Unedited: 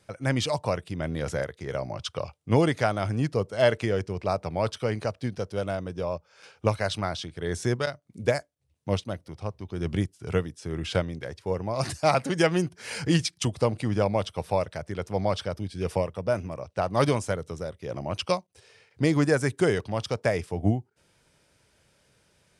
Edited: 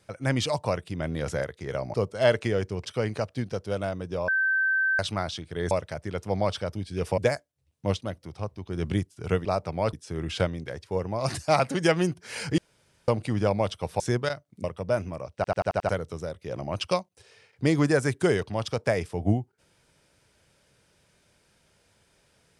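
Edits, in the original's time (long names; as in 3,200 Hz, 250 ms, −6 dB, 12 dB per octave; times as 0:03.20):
0:01.94–0:03.32: remove
0:04.23–0:04.71: move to 0:10.48
0:06.14–0:06.85: beep over 1,550 Hz −21 dBFS
0:07.57–0:08.21: swap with 0:14.55–0:16.02
0:13.13–0:13.63: fill with room tone
0:16.73: stutter in place 0.09 s, 6 plays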